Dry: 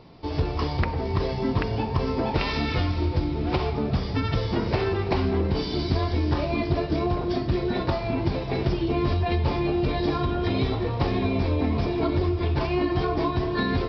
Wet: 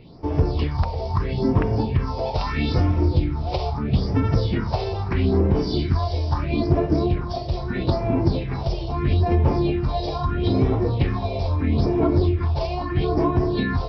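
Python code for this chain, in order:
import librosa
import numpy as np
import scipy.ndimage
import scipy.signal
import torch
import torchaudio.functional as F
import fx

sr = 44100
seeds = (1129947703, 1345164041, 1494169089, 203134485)

y = fx.phaser_stages(x, sr, stages=4, low_hz=250.0, high_hz=4000.0, hz=0.77, feedback_pct=40)
y = y * librosa.db_to_amplitude(3.5)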